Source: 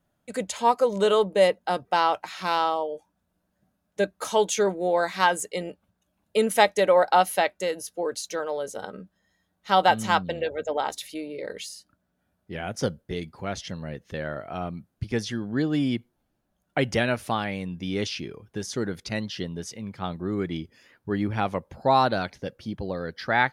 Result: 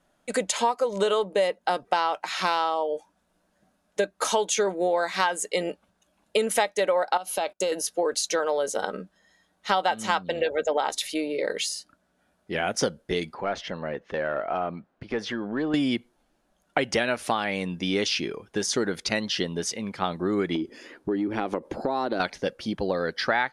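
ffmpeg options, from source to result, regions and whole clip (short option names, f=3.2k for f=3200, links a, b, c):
-filter_complex "[0:a]asettb=1/sr,asplit=3[a][b][c];[a]atrim=end=7.174[d];[b]atrim=start=7.17:end=7.72,asetpts=PTS-STARTPTS,afade=t=in:d=0.004:c=qsin,afade=t=out:st=0.546:d=0.004:c=qsin,equalizer=f=1.9k:t=o:w=0.32:g=-14,acompressor=threshold=-27dB:ratio=16:attack=3.2:release=140:knee=1:detection=peak,agate=range=-22dB:threshold=-51dB:ratio=16:release=100:detection=peak[e];[c]atrim=start=7.716[f];[d][e]acrossfade=d=0.004:c1=hsin:c2=qsin[g];[g][f]acrossfade=d=0.004:c1=qsin:c2=hsin,asettb=1/sr,asplit=3[h][i][j];[h]atrim=end=13.344[k];[i]atrim=start=13.34:end=15.74,asetpts=PTS-STARTPTS,afade=t=in:d=0.004:c=qsin,afade=t=out:st=2.396:d=0.004:c=qsin,highshelf=f=4.4k:g=-10,acompressor=threshold=-29dB:ratio=3:attack=3.2:release=140:knee=1:detection=peak,asplit=2[l][m];[m]highpass=f=720:p=1,volume=10dB,asoftclip=type=tanh:threshold=-21dB[n];[l][n]amix=inputs=2:normalize=0,lowpass=f=1.2k:p=1,volume=-6dB[o];[j]atrim=start=15.736[p];[k][o]acrossfade=d=0.004:c1=hsin:c2=qsin[q];[q][p]acrossfade=d=0.004:c1=qsin:c2=hsin,asettb=1/sr,asplit=3[r][s][t];[r]atrim=end=20.554[u];[s]atrim=start=20.55:end=22.2,asetpts=PTS-STARTPTS,afade=t=in:d=0.004:c=qsin,afade=t=out:st=1.646:d=0.004:c=qsin,equalizer=f=330:t=o:w=1.3:g=14.5,acompressor=threshold=-29dB:ratio=6:attack=3.2:release=140:knee=1:detection=peak[v];[t]atrim=start=22.196[w];[u][v]acrossfade=d=0.004:c1=hsin:c2=qsin[x];[x][w]acrossfade=d=0.004:c1=qsin:c2=hsin,lowpass=f=11k:w=0.5412,lowpass=f=11k:w=1.3066,equalizer=f=98:t=o:w=1.8:g=-14.5,acompressor=threshold=-30dB:ratio=6,volume=9dB"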